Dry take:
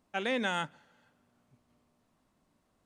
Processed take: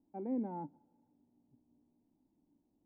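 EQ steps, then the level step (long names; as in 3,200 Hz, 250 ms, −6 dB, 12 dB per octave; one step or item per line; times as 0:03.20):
formant resonators in series u
high-frequency loss of the air 460 metres
+7.0 dB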